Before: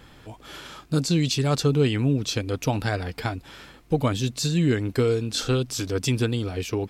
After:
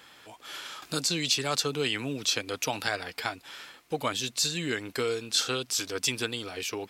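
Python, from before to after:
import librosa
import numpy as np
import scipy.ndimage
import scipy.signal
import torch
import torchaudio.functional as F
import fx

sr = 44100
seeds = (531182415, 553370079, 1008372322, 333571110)

y = fx.highpass(x, sr, hz=1300.0, slope=6)
y = fx.band_squash(y, sr, depth_pct=40, at=(0.82, 2.88))
y = y * librosa.db_to_amplitude(2.5)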